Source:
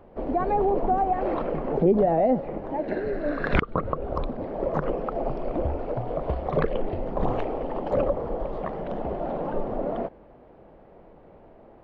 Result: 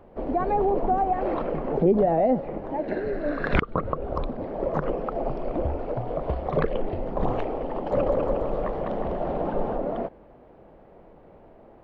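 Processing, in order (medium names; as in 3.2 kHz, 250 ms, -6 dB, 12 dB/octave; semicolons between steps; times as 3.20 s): 7.74–9.78 s: bouncing-ball echo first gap 200 ms, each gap 0.8×, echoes 5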